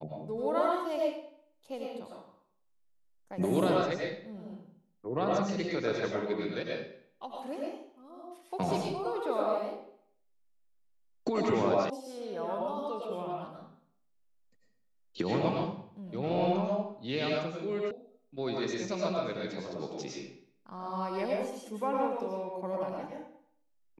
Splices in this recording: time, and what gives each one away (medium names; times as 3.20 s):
11.90 s: sound stops dead
17.91 s: sound stops dead